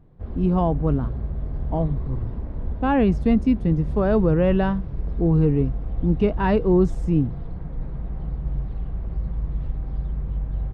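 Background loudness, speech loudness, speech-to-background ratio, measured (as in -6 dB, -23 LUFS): -31.0 LUFS, -22.0 LUFS, 9.0 dB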